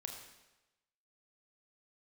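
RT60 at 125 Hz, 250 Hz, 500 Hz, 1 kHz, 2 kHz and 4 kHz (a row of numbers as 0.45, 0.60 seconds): 0.95, 0.95, 1.0, 1.0, 1.0, 0.95 seconds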